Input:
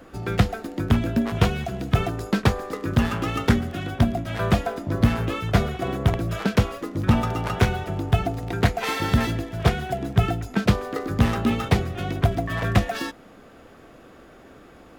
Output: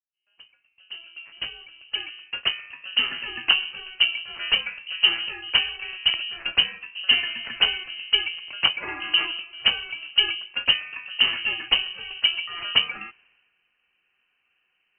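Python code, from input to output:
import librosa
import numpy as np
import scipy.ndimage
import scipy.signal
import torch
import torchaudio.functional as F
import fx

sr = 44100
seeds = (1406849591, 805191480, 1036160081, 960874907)

y = fx.fade_in_head(x, sr, length_s=3.2)
y = fx.freq_invert(y, sr, carrier_hz=3000)
y = fx.band_widen(y, sr, depth_pct=70)
y = y * 10.0 ** (-4.5 / 20.0)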